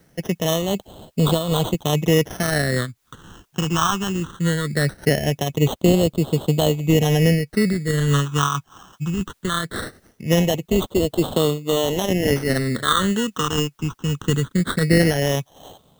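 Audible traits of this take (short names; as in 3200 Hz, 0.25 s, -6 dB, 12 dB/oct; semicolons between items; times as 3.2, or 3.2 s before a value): aliases and images of a low sample rate 2400 Hz, jitter 0%; phasing stages 8, 0.2 Hz, lowest notch 580–1800 Hz; a quantiser's noise floor 12-bit, dither triangular; noise-modulated level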